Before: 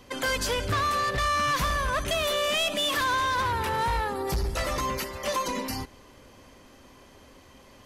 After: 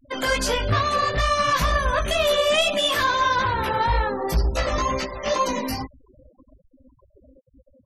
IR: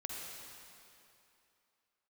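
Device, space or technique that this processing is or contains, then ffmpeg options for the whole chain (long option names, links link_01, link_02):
double-tracked vocal: -filter_complex "[0:a]asplit=2[link_01][link_02];[link_02]adelay=19,volume=-11dB[link_03];[link_01][link_03]amix=inputs=2:normalize=0,flanger=delay=15:depth=3.5:speed=2.2,asettb=1/sr,asplit=3[link_04][link_05][link_06];[link_04]atrim=end=4.604[link_07];[link_05]atrim=start=4.6:end=5.46,asetpts=PTS-STARTPTS,afade=type=in:duration=0.004:curve=qsin,afade=type=out:start_time=0.856:duration=0.004:curve=qsin,lowpass=7600[link_08];[link_06]atrim=start=5.456[link_09];[link_07][link_08]acrossfade=duration=0.004:curve1=hsin:curve2=qsin[link_10];[link_10][link_09]acrossfade=duration=0.004:curve1=qsin:curve2=hsin,equalizer=frequency=640:width_type=o:width=0.39:gain=4,afftfilt=real='re*gte(hypot(re,im),0.01)':imag='im*gte(hypot(re,im),0.01)':win_size=1024:overlap=0.75,volume=7dB"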